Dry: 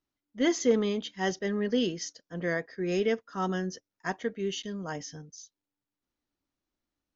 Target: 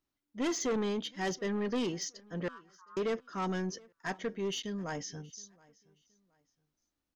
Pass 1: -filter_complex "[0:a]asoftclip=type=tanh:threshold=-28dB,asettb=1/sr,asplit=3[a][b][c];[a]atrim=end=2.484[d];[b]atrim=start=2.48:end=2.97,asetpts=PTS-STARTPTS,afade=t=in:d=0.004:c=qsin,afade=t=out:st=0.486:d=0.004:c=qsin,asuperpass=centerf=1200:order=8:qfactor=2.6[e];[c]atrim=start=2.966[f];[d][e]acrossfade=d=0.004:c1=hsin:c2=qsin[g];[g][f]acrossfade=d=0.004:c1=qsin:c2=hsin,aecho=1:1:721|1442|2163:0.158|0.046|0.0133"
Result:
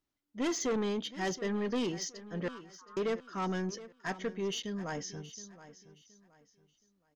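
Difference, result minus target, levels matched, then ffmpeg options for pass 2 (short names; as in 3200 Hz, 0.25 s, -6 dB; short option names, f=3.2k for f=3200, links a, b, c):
echo-to-direct +9.5 dB
-filter_complex "[0:a]asoftclip=type=tanh:threshold=-28dB,asettb=1/sr,asplit=3[a][b][c];[a]atrim=end=2.484[d];[b]atrim=start=2.48:end=2.97,asetpts=PTS-STARTPTS,afade=t=in:d=0.004:c=qsin,afade=t=out:st=0.486:d=0.004:c=qsin,asuperpass=centerf=1200:order=8:qfactor=2.6[e];[c]atrim=start=2.966[f];[d][e]acrossfade=d=0.004:c1=hsin:c2=qsin[g];[g][f]acrossfade=d=0.004:c1=qsin:c2=hsin,aecho=1:1:721|1442:0.0531|0.0154"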